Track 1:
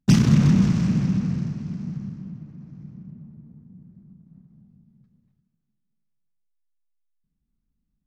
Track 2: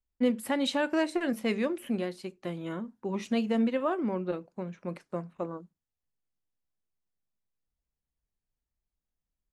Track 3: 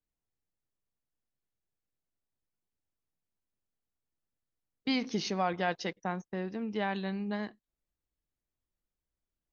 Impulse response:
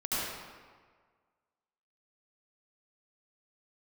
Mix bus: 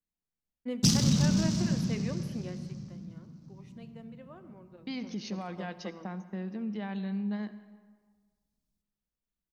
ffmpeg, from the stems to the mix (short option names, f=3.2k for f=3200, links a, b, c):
-filter_complex "[0:a]highshelf=f=3.1k:t=q:w=1.5:g=12,adelay=750,volume=-10.5dB,asplit=2[a][b];[b]volume=-15.5dB[c];[1:a]adelay=450,volume=1dB,afade=t=out:st=2.43:d=0.54:silence=0.251189,afade=t=in:st=4.83:d=0.73:silence=0.266073,asplit=2[d][e];[e]volume=-19dB[f];[2:a]equalizer=f=200:w=3.2:g=10,alimiter=limit=-23dB:level=0:latency=1:release=115,volume=-6dB,asplit=2[g][h];[h]volume=-20.5dB[i];[3:a]atrim=start_sample=2205[j];[c][f][i]amix=inputs=3:normalize=0[k];[k][j]afir=irnorm=-1:irlink=0[l];[a][d][g][l]amix=inputs=4:normalize=0"